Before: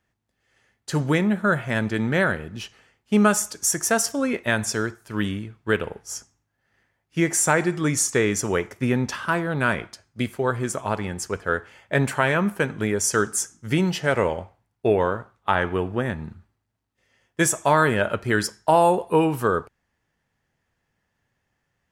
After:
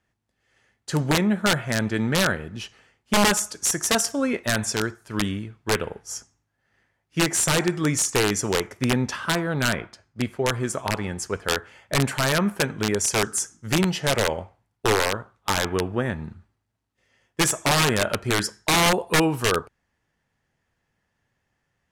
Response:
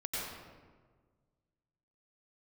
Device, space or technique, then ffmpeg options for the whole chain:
overflowing digital effects unit: -filter_complex "[0:a]aeval=exprs='(mod(4.22*val(0)+1,2)-1)/4.22':c=same,lowpass=12000,asettb=1/sr,asplit=3[s0][s1][s2];[s0]atrim=end=9.744[s3];[s1]atrim=start=9.74:end=10.46,asetpts=PTS-STARTPTS,afade=t=in:d=0.004:c=qsin,afade=t=out:st=0.716:d=0.004:c=qsin,highshelf=f=5000:g=-10[s4];[s2]atrim=start=10.456[s5];[s3][s4]acrossfade=d=0.004:c1=hsin:c2=qsin[s6];[s6][s5]acrossfade=d=0.004:c1=qsin:c2=hsin"

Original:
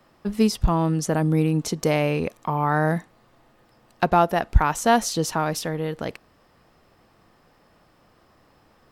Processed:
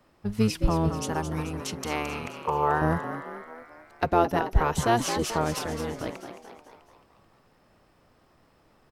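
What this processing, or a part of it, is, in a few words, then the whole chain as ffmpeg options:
octave pedal: -filter_complex "[0:a]asettb=1/sr,asplit=3[s0][s1][s2];[s0]atrim=end=0.884[s3];[s1]atrim=start=0.88:end=2.82,asetpts=PTS-STARTPTS,afade=t=in:d=0.004:c=qsin,afade=t=out:st=1.936:d=0.004:c=qsin,lowshelf=f=700:t=q:w=3:g=-6.5[s4];[s2]atrim=start=2.816[s5];[s3][s4]acrossfade=d=0.004:c1=hsin:c2=qsin[s6];[s6][s5]acrossfade=d=0.004:c1=qsin:c2=hsin,asplit=7[s7][s8][s9][s10][s11][s12][s13];[s8]adelay=218,afreqshift=110,volume=0.335[s14];[s9]adelay=436,afreqshift=220,volume=0.18[s15];[s10]adelay=654,afreqshift=330,volume=0.0977[s16];[s11]adelay=872,afreqshift=440,volume=0.0525[s17];[s12]adelay=1090,afreqshift=550,volume=0.0285[s18];[s13]adelay=1308,afreqshift=660,volume=0.0153[s19];[s7][s14][s15][s16][s17][s18][s19]amix=inputs=7:normalize=0,asplit=2[s20][s21];[s21]asetrate=22050,aresample=44100,atempo=2,volume=0.631[s22];[s20][s22]amix=inputs=2:normalize=0,volume=0.531"

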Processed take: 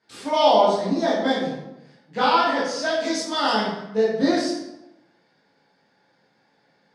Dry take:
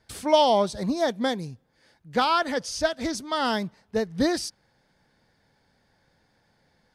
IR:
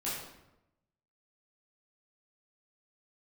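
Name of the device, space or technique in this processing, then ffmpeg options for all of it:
supermarket ceiling speaker: -filter_complex "[0:a]asettb=1/sr,asplit=3[s0][s1][s2];[s0]atrim=end=2.914[s3];[s1]atrim=start=2.91:end=3.53,asetpts=PTS-STARTPTS,afade=t=in:d=0.004:c=qsin,afade=t=out:st=0.616:d=0.004:c=qsin,bass=f=250:g=-4,treble=f=4000:g=8[s4];[s2]atrim=start=3.526[s5];[s3][s4]acrossfade=d=0.004:c1=hsin:c2=qsin[s6];[s6][s5]acrossfade=d=0.004:c1=qsin:c2=hsin,highpass=220,lowpass=6000[s7];[1:a]atrim=start_sample=2205[s8];[s7][s8]afir=irnorm=-1:irlink=0"

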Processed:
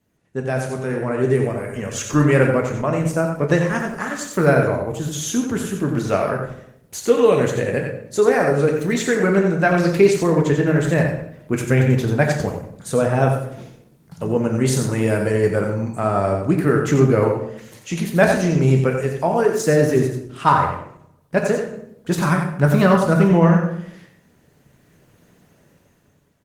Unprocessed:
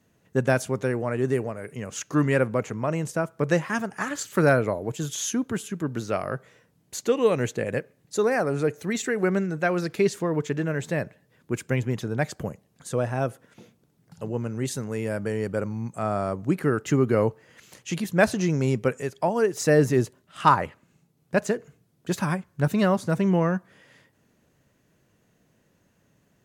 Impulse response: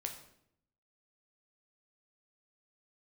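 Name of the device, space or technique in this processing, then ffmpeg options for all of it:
speakerphone in a meeting room: -filter_complex "[0:a]asplit=3[s0][s1][s2];[s0]afade=t=out:st=21.42:d=0.02[s3];[s1]adynamicequalizer=threshold=0.00631:dfrequency=1300:dqfactor=3.9:tfrequency=1300:tqfactor=3.9:attack=5:release=100:ratio=0.375:range=2.5:mode=boostabove:tftype=bell,afade=t=in:st=21.42:d=0.02,afade=t=out:st=23.25:d=0.02[s4];[s2]afade=t=in:st=23.25:d=0.02[s5];[s3][s4][s5]amix=inputs=3:normalize=0,aecho=1:1:90:0.473[s6];[1:a]atrim=start_sample=2205[s7];[s6][s7]afir=irnorm=-1:irlink=0,dynaudnorm=f=290:g=7:m=5.31,volume=0.891" -ar 48000 -c:a libopus -b:a 20k

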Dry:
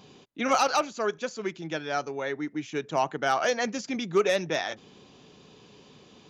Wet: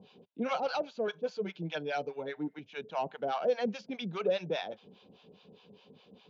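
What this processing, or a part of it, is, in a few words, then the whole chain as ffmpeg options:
guitar amplifier with harmonic tremolo: -filter_complex "[0:a]asettb=1/sr,asplit=3[s0][s1][s2];[s0]atrim=end=1.074[s3];[s1]atrim=start=1.07:end=2.59,asetpts=PTS-STARTPTS,afade=t=in:d=0.004:c=qsin,afade=t=out:st=1.516:d=0.004:c=qsin,aecho=1:1:6.6:0.89,atrim=end_sample=67032[s4];[s2]atrim=start=2.586[s5];[s3][s4]acrossfade=d=0.004:c1=hsin:c2=qsin[s6];[s6][s5]acrossfade=d=0.004:c1=qsin:c2=hsin,acrossover=split=690[s7][s8];[s7]aeval=exprs='val(0)*(1-1/2+1/2*cos(2*PI*4.9*n/s))':c=same[s9];[s8]aeval=exprs='val(0)*(1-1/2-1/2*cos(2*PI*4.9*n/s))':c=same[s10];[s9][s10]amix=inputs=2:normalize=0,asoftclip=type=tanh:threshold=0.1,highpass=95,equalizer=f=130:t=q:w=4:g=-8,equalizer=f=190:t=q:w=4:g=5,equalizer=f=310:t=q:w=4:g=-7,equalizer=f=490:t=q:w=4:g=5,equalizer=f=1200:t=q:w=4:g=-8,equalizer=f=1900:t=q:w=4:g=-10,lowpass=f=4000:w=0.5412,lowpass=f=4000:w=1.3066"

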